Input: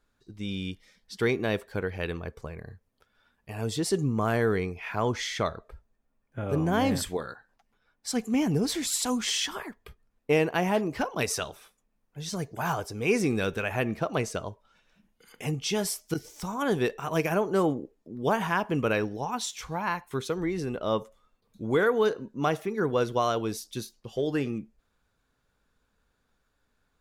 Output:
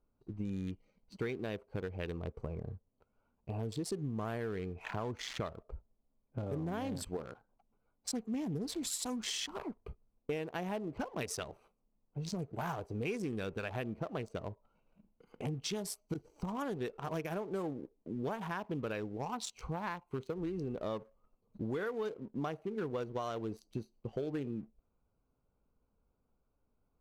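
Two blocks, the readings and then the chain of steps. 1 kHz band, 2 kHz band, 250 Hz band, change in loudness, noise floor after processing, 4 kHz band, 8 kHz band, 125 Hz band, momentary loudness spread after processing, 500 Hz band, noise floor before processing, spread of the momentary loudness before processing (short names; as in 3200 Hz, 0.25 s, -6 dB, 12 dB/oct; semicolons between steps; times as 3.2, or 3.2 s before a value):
-11.5 dB, -13.5 dB, -9.5 dB, -11.0 dB, -80 dBFS, -10.5 dB, -10.0 dB, -8.0 dB, 9 LU, -11.0 dB, -75 dBFS, 13 LU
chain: Wiener smoothing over 25 samples; compressor 6:1, threshold -38 dBFS, peak gain reduction 18 dB; sample leveller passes 1; gain -1 dB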